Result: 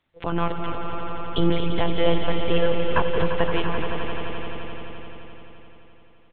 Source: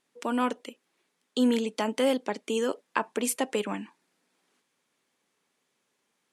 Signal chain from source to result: frequency-shifting echo 237 ms, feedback 32%, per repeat -69 Hz, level -9 dB; monotone LPC vocoder at 8 kHz 170 Hz; echo with a slow build-up 86 ms, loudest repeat 5, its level -10 dB; trim +4 dB

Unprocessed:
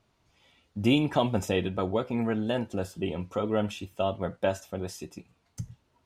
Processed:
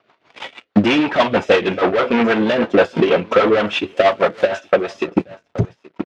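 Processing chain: 3.97–4.48 s: zero-crossing glitches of -30.5 dBFS; overdrive pedal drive 32 dB, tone 2.7 kHz, clips at -10 dBFS; 5.07–5.65 s: tilt EQ -4.5 dB/octave; delay 826 ms -15.5 dB; waveshaping leveller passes 3; rotary cabinet horn 6.3 Hz; transient shaper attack +12 dB, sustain -8 dB; low-pass 5.1 kHz 12 dB/octave; tone controls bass -4 dB, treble -8 dB; level rider; high-pass 170 Hz 6 dB/octave; trim -1 dB

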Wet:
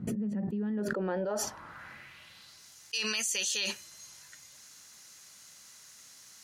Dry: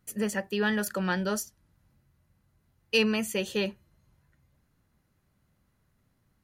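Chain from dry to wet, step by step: band-pass sweep 200 Hz -> 6.3 kHz, 0.55–2.70 s; level flattener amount 100%; trim -3 dB

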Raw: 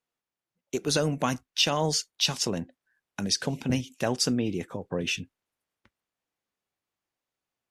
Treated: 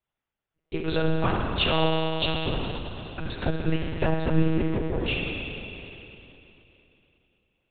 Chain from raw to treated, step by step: spring tank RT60 3.1 s, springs 33 ms, chirp 50 ms, DRR -2.5 dB; monotone LPC vocoder at 8 kHz 160 Hz; 3.22–4.48 s: transient shaper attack +7 dB, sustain -2 dB

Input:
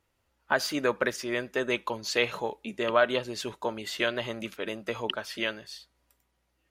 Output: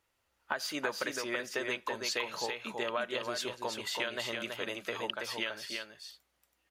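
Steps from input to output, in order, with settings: bass shelf 450 Hz -9.5 dB; compression 6:1, threshold -31 dBFS, peak gain reduction 11.5 dB; delay 328 ms -4.5 dB

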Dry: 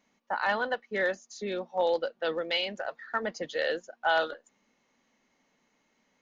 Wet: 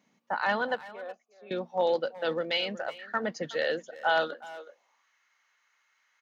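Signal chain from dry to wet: 0.87–1.51 s: vowel filter a; speakerphone echo 370 ms, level -16 dB; high-pass sweep 140 Hz -> 1.4 kHz, 4.22–5.09 s

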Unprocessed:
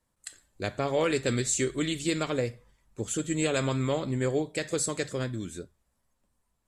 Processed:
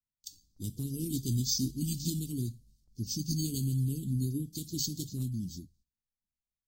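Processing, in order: formant shift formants -3 st; careless resampling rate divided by 4×, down none, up hold; inverse Chebyshev band-stop 630–1900 Hz, stop band 60 dB; gate with hold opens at -60 dBFS; AAC 48 kbps 44.1 kHz

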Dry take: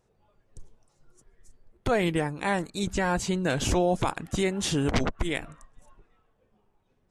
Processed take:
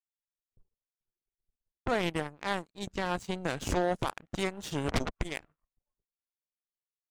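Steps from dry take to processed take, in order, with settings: level-controlled noise filter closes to 620 Hz, open at -23 dBFS; power-law waveshaper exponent 2

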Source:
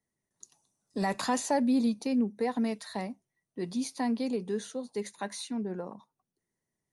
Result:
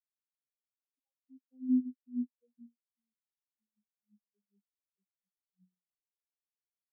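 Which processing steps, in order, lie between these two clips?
vocoder on a note that slides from D4, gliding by -10 st; spectral contrast expander 4:1; trim -2.5 dB

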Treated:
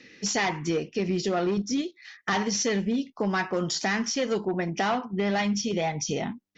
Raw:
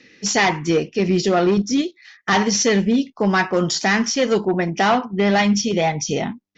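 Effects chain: compression 2:1, threshold -28 dBFS, peak gain reduction 8 dB; trim -1.5 dB

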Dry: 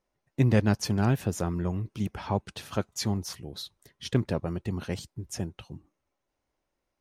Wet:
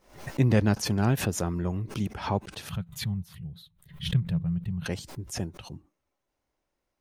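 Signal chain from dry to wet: 2.69–4.86 s: FFT filter 110 Hz 0 dB, 170 Hz +8 dB, 260 Hz -22 dB, 3.6 kHz -9 dB, 5.6 kHz -24 dB, 13 kHz -8 dB; swell ahead of each attack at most 120 dB/s

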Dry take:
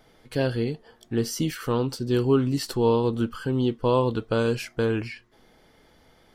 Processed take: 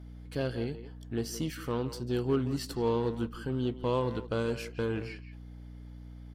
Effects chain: hum 60 Hz, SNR 12 dB; speakerphone echo 170 ms, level -11 dB; Chebyshev shaper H 8 -30 dB, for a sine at -9 dBFS; trim -8 dB

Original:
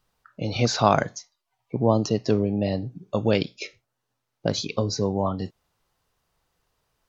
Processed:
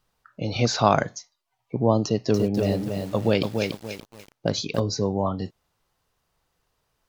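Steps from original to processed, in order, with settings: 2.05–4.80 s: bit-crushed delay 288 ms, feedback 35%, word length 7-bit, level -4.5 dB

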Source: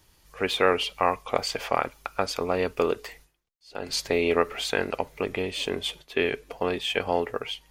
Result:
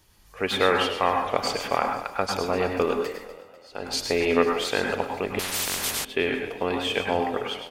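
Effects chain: frequency-shifting echo 247 ms, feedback 46%, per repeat +34 Hz, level -15.5 dB; on a send at -3 dB: reverberation RT60 0.40 s, pre-delay 92 ms; 5.39–6.05 s: on the sum: spectrum-flattening compressor 10:1

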